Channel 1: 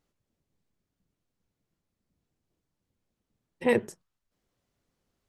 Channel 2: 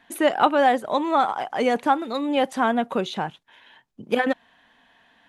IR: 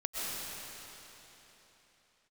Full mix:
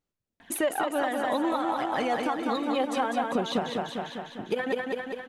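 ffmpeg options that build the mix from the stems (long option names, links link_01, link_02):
-filter_complex "[0:a]alimiter=limit=-18dB:level=0:latency=1,volume=-7.5dB[link_01];[1:a]acompressor=threshold=-25dB:ratio=6,aphaser=in_gain=1:out_gain=1:delay=4.9:decay=0.48:speed=0.67:type=triangular,adelay=400,volume=2dB,asplit=2[link_02][link_03];[link_03]volume=-4.5dB,aecho=0:1:200|400|600|800|1000|1200|1400|1600|1800:1|0.59|0.348|0.205|0.121|0.0715|0.0422|0.0249|0.0147[link_04];[link_01][link_02][link_04]amix=inputs=3:normalize=0,alimiter=limit=-17.5dB:level=0:latency=1:release=262"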